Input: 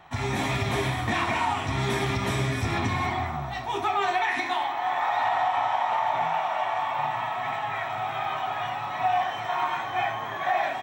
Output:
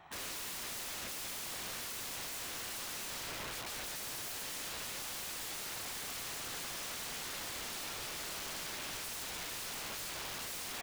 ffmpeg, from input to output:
-af "lowshelf=f=130:g=-2.5,aeval=exprs='(mod(37.6*val(0)+1,2)-1)/37.6':c=same,volume=-6dB"

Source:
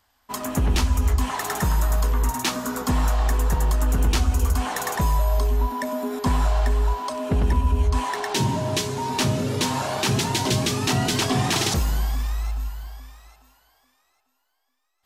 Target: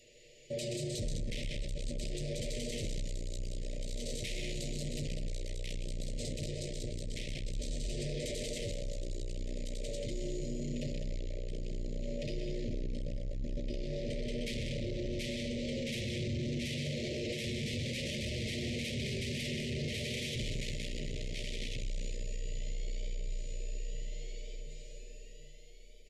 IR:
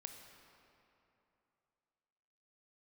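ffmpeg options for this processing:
-filter_complex "[0:a]aecho=1:1:4.9:0.7,asplit=2[a][b];[1:a]atrim=start_sample=2205[c];[b][c]afir=irnorm=-1:irlink=0,volume=6dB[d];[a][d]amix=inputs=2:normalize=0,acompressor=threshold=-35dB:ratio=2,equalizer=f=12k:w=1.2:g=-4,aecho=1:1:72|87|115|484|700|809:0.355|0.316|0.398|0.188|0.168|0.631,asoftclip=type=tanh:threshold=-26dB,bandreject=f=51.25:t=h:w=4,bandreject=f=102.5:t=h:w=4,bandreject=f=153.75:t=h:w=4,asetrate=25442,aresample=44100,asuperstop=centerf=1100:order=12:qfactor=0.8,highshelf=f=7.2k:g=7.5,alimiter=level_in=5.5dB:limit=-24dB:level=0:latency=1:release=20,volume=-5.5dB"

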